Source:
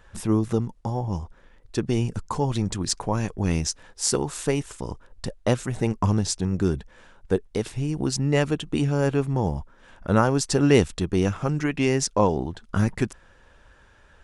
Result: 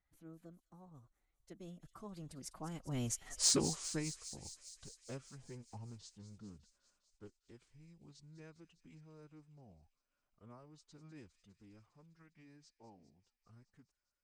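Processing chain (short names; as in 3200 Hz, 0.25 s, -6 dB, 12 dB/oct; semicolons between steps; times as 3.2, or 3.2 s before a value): Doppler pass-by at 3.38, 52 m/s, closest 4.4 m; soft clip -19.5 dBFS, distortion -17 dB; formant-preserving pitch shift +4 st; thin delay 0.202 s, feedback 74%, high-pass 3600 Hz, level -11 dB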